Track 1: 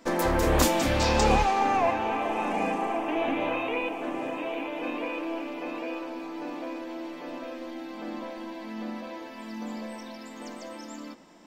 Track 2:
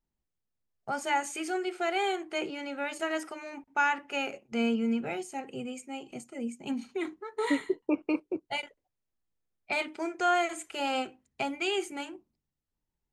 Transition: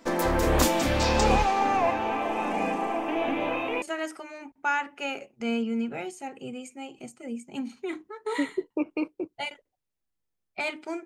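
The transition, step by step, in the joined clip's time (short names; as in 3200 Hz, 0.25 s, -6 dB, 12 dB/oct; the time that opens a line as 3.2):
track 1
3.82 switch to track 2 from 2.94 s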